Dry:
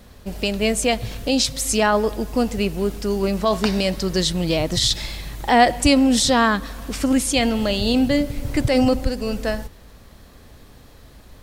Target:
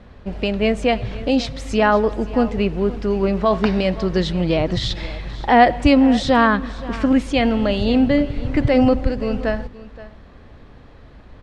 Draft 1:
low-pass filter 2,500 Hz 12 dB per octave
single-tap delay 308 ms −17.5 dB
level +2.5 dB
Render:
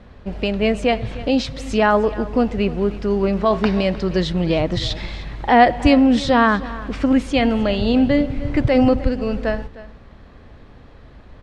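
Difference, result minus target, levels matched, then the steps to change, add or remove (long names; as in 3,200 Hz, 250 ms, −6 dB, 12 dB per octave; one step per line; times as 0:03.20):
echo 216 ms early
change: single-tap delay 524 ms −17.5 dB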